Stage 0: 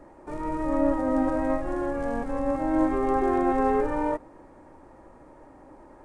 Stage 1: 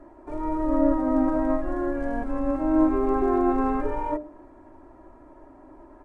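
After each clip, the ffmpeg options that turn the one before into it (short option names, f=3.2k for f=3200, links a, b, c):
-af "highshelf=f=2.7k:g=-11,bandreject=f=60:t=h:w=6,bandreject=f=120:t=h:w=6,bandreject=f=180:t=h:w=6,bandreject=f=240:t=h:w=6,bandreject=f=300:t=h:w=6,bandreject=f=360:t=h:w=6,bandreject=f=420:t=h:w=6,bandreject=f=480:t=h:w=6,bandreject=f=540:t=h:w=6,bandreject=f=600:t=h:w=6,aecho=1:1:3:0.66"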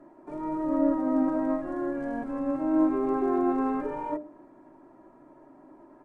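-af "lowshelf=f=100:t=q:w=3:g=-14,volume=-4.5dB"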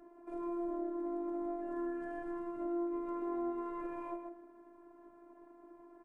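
-filter_complex "[0:a]asplit=2[a][b];[b]aecho=0:1:127:0.355[c];[a][c]amix=inputs=2:normalize=0,acompressor=threshold=-31dB:ratio=5,afftfilt=real='hypot(re,im)*cos(PI*b)':imag='0':win_size=512:overlap=0.75,volume=-3dB"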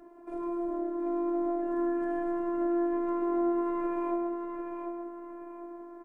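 -af "aecho=1:1:746|1492|2238|2984:0.501|0.165|0.0546|0.018,volume=5dB"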